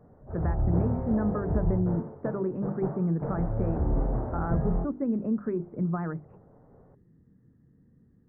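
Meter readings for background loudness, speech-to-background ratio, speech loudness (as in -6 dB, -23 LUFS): -32.0 LUFS, 0.5 dB, -31.5 LUFS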